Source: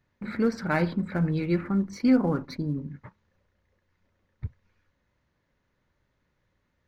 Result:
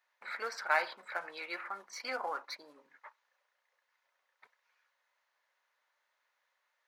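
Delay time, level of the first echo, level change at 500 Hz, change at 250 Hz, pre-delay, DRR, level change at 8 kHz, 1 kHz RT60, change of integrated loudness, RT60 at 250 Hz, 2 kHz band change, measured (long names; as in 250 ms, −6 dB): no echo audible, no echo audible, −12.0 dB, −34.0 dB, no reverb audible, no reverb audible, can't be measured, no reverb audible, −10.5 dB, no reverb audible, 0.0 dB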